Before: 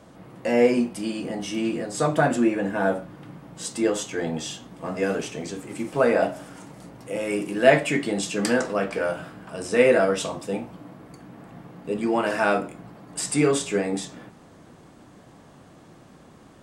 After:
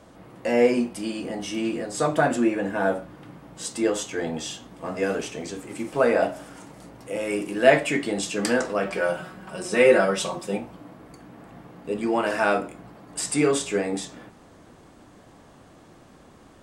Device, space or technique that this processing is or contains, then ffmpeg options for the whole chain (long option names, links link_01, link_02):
low shelf boost with a cut just above: -filter_complex "[0:a]lowshelf=frequency=65:gain=5.5,equalizer=frequency=150:width_type=o:width=1.1:gain=-5,asettb=1/sr,asplit=3[link_01][link_02][link_03];[link_01]atrim=end=8.854[link_04];[link_02]atrim=start=8.85:end=10.58,asetpts=PTS-STARTPTS,afade=type=in:duration=0.004:curve=qsin,afade=type=out:start_time=1.726:duration=0.004:curve=qsin,aecho=1:1:5.4:0.67,atrim=end_sample=76293[link_05];[link_03]atrim=start=10.576[link_06];[link_04][link_05]acrossfade=duration=0.004:curve1=hsin:curve2=qsin[link_07];[link_07][link_06]acrossfade=duration=0.004:curve1=qsin:curve2=hsin"